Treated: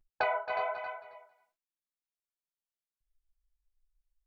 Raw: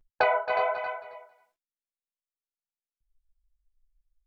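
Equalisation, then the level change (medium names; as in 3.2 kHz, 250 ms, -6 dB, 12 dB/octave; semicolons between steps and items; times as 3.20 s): peaking EQ 490 Hz -6 dB 0.3 oct; -6.0 dB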